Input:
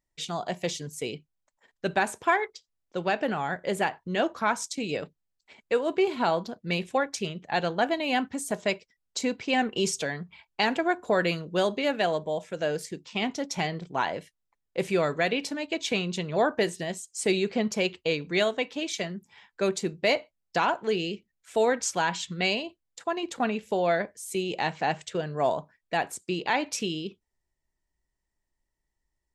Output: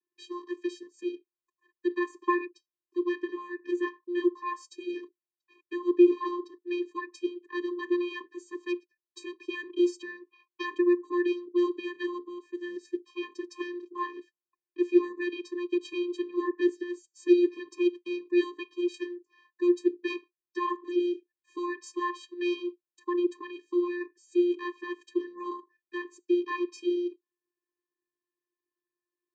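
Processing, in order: tone controls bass -6 dB, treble -3 dB; vocoder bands 16, square 352 Hz

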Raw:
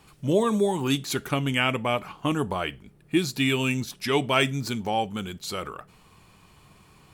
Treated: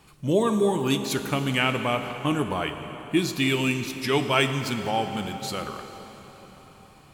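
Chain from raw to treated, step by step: plate-style reverb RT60 4.4 s, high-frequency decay 0.8×, DRR 7 dB

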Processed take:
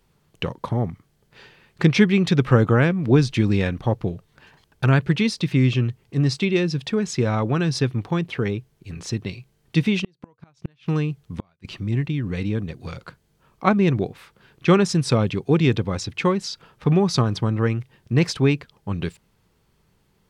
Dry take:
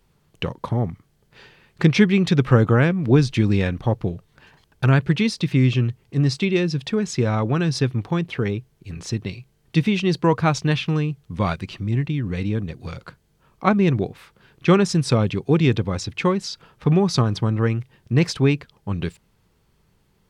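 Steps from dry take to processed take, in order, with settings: bass shelf 100 Hz -3 dB; 9.98–11.65 s: inverted gate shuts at -14 dBFS, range -39 dB

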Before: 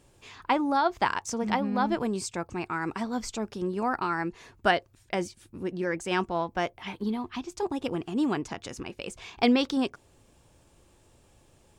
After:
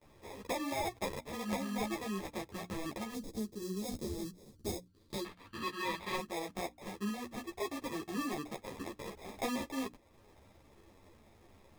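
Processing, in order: wow and flutter 18 cents; sample-and-hold 30×; 3.14–5.25 s: high-order bell 1.4 kHz -15 dB 2.6 oct; 4.87–6.16 s: time-frequency box 870–4900 Hz +8 dB; bass shelf 150 Hz -4 dB; compression 2:1, threshold -44 dBFS, peak gain reduction 14.5 dB; hum notches 60/120/180/240/300 Hz; gate with hold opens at -56 dBFS; three-phase chorus; trim +4 dB

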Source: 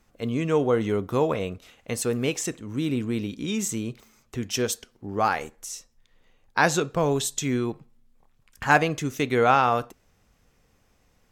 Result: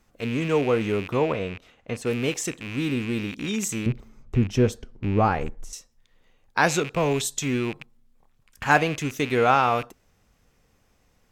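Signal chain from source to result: rattle on loud lows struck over -43 dBFS, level -24 dBFS; 1.08–2.05 s: low-pass 3.9 kHz -> 1.7 kHz 6 dB/octave; 3.86–5.73 s: tilt EQ -4 dB/octave

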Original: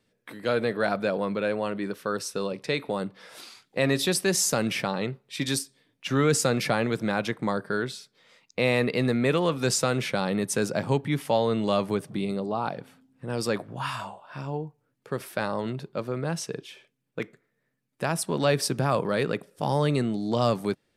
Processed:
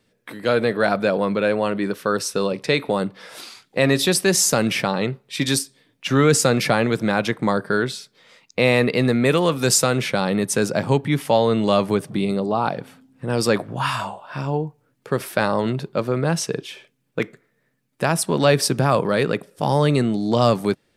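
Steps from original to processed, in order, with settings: 9.25–9.87 s: treble shelf 8.6 kHz +10 dB; in parallel at +1 dB: gain riding within 4 dB 2 s

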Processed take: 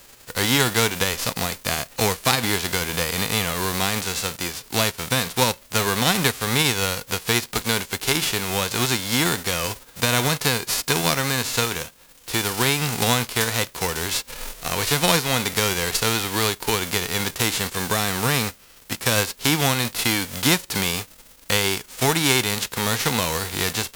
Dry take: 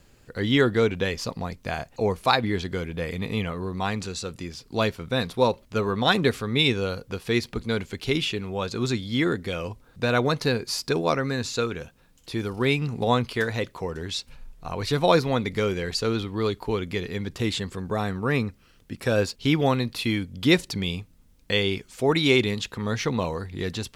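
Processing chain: formants flattened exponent 0.3; compression 2:1, threshold -27 dBFS, peak gain reduction 8 dB; trim +7 dB

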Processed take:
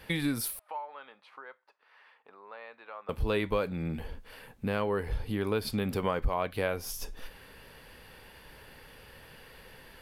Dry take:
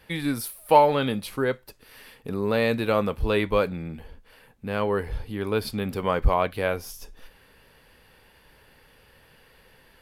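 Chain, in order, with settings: compression 3:1, threshold -33 dBFS, peak gain reduction 16.5 dB; 0.59–3.09 s: ladder band-pass 1.2 kHz, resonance 30%; trim +4 dB

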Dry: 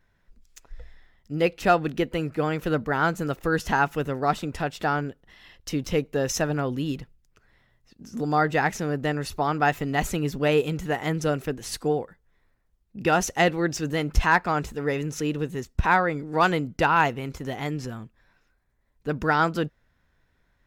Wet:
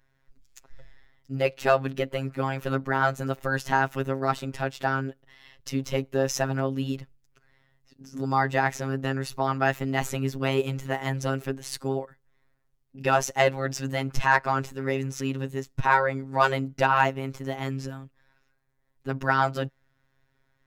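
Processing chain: wow and flutter 27 cents; robot voice 134 Hz; dynamic bell 800 Hz, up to +3 dB, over -36 dBFS, Q 0.77

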